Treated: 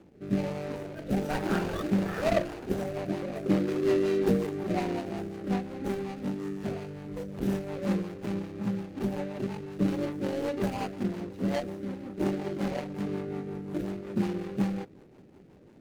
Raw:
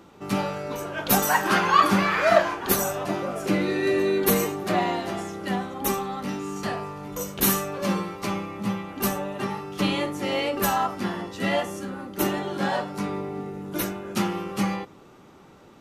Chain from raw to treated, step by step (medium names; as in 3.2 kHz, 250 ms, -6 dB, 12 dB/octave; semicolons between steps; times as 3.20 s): median filter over 41 samples; rotary cabinet horn 1.2 Hz, later 5.5 Hz, at 2.00 s